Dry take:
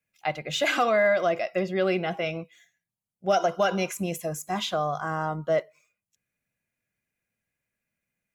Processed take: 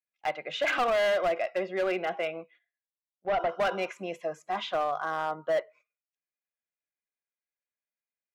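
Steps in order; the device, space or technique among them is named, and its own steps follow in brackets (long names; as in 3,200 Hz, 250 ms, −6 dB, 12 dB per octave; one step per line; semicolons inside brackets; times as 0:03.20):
walkie-talkie (band-pass filter 420–2,600 Hz; hard clipping −22.5 dBFS, distortion −12 dB; noise gate −55 dBFS, range −14 dB)
0:02.27–0:03.49: high-frequency loss of the air 260 metres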